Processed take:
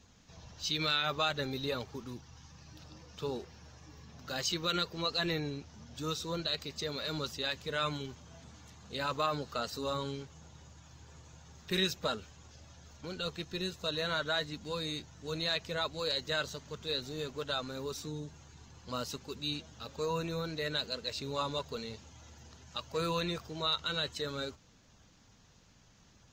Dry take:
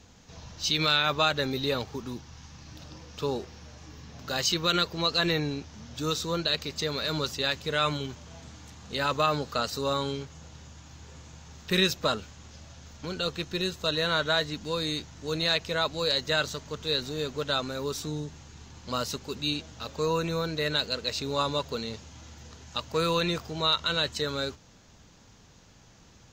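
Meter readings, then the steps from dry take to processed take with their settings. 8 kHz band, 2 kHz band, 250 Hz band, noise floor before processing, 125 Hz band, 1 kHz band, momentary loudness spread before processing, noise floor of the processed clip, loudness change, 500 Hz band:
-7.0 dB, -7.0 dB, -7.0 dB, -55 dBFS, -6.5 dB, -7.0 dB, 22 LU, -62 dBFS, -7.0 dB, -7.0 dB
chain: coarse spectral quantiser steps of 15 dB; trim -6.5 dB

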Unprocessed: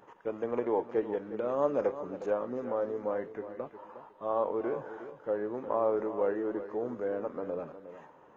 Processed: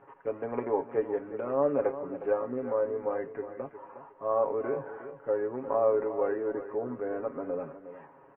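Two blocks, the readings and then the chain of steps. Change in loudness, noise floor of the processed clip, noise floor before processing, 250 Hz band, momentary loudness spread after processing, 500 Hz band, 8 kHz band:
+2.0 dB, -55 dBFS, -58 dBFS, 0.0 dB, 14 LU, +2.0 dB, no reading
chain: steep low-pass 2.5 kHz 36 dB/octave; comb 7.3 ms, depth 66%

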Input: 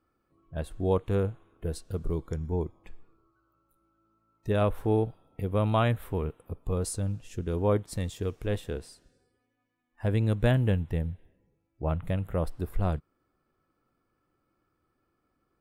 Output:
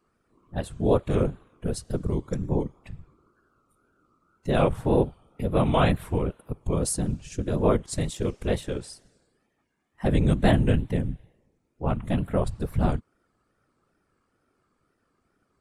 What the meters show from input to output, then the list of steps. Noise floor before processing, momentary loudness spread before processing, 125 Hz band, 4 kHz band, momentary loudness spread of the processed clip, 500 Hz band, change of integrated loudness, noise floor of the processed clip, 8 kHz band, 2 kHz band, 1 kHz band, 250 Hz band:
-77 dBFS, 12 LU, +2.0 dB, +5.5 dB, 13 LU, +3.5 dB, +3.5 dB, -74 dBFS, +7.5 dB, +4.0 dB, +4.5 dB, +6.0 dB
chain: low-pass 9.8 kHz 24 dB/octave; treble shelf 7.2 kHz +9 dB; whisper effect; wow and flutter 110 cents; trim +4 dB

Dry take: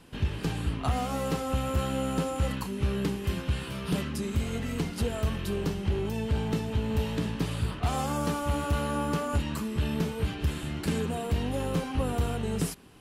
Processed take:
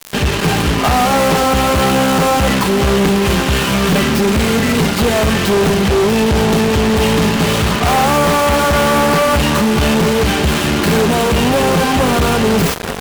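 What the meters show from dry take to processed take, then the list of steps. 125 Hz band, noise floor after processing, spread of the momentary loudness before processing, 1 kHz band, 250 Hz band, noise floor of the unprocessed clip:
+12.5 dB, -17 dBFS, 3 LU, +20.5 dB, +17.0 dB, -38 dBFS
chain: tracing distortion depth 0.25 ms; echo that smears into a reverb 492 ms, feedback 63%, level -15 dB; crackle 430 per s -38 dBFS; high-pass 57 Hz 24 dB/octave; tone controls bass -6 dB, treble -5 dB; comb 5 ms, depth 33%; fuzz box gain 41 dB, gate -42 dBFS; reverse; upward compressor, threshold -17 dBFS; reverse; trim +3 dB

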